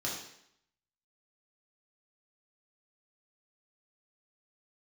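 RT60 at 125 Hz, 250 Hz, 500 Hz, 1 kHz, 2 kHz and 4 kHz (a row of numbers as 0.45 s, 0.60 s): 0.65 s, 0.75 s, 0.70 s, 0.75 s, 0.75 s, 0.70 s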